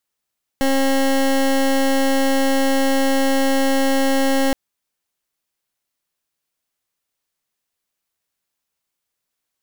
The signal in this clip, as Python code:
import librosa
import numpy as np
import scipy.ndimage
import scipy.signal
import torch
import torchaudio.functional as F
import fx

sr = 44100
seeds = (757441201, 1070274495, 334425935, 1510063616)

y = fx.pulse(sr, length_s=3.92, hz=270.0, level_db=-16.5, duty_pct=22)